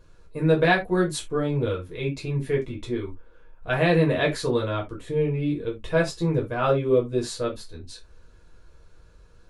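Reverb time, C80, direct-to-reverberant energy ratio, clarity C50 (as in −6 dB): non-exponential decay, 23.5 dB, −2.5 dB, 13.5 dB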